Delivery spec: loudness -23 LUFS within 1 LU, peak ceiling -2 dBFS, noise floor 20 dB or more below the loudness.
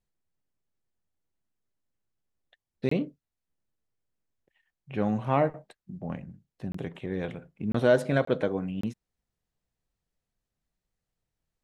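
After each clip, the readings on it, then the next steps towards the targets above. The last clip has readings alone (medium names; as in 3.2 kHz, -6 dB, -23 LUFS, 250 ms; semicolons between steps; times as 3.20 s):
dropouts 5; longest dropout 24 ms; loudness -29.5 LUFS; peak level -8.5 dBFS; loudness target -23.0 LUFS
-> interpolate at 2.89/6.72/7.72/8.25/8.81 s, 24 ms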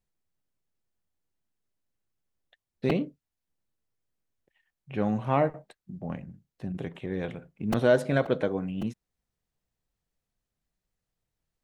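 dropouts 0; loudness -29.0 LUFS; peak level -8.5 dBFS; loudness target -23.0 LUFS
-> trim +6 dB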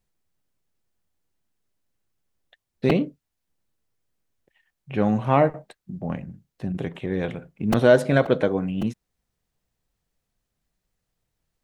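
loudness -23.0 LUFS; peak level -2.5 dBFS; noise floor -81 dBFS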